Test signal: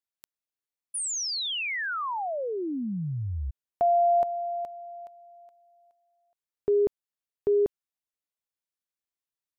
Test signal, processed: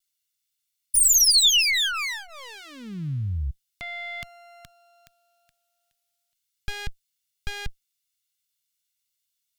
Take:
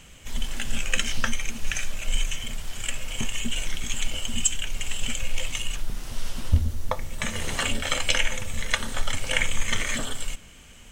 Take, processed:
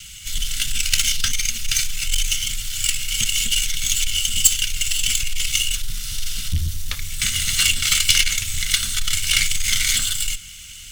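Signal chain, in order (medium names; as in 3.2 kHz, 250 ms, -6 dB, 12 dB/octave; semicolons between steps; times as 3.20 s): comb filter that takes the minimum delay 1.4 ms; saturation -20 dBFS; FFT filter 140 Hz 0 dB, 730 Hz -25 dB, 1.2 kHz -5 dB, 3.3 kHz +11 dB; vibrato 0.35 Hz 5.9 cents; trim +5 dB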